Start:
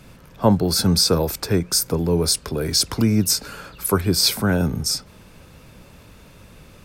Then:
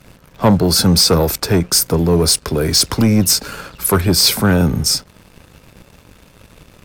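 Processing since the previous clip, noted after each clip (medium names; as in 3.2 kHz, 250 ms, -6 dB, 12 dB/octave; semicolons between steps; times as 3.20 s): waveshaping leveller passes 2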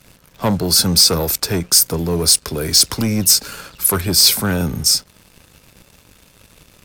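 treble shelf 2.8 kHz +9.5 dB; trim -6 dB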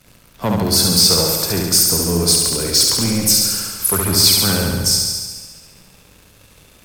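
backward echo that repeats 109 ms, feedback 45%, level -11.5 dB; on a send: flutter echo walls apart 11.9 m, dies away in 1.3 s; on the sum: trim -2.5 dB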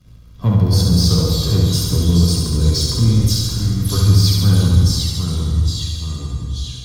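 ever faster or slower copies 216 ms, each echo -2 st, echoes 3, each echo -6 dB; reverberation RT60 0.35 s, pre-delay 3 ms, DRR 2.5 dB; trim -16 dB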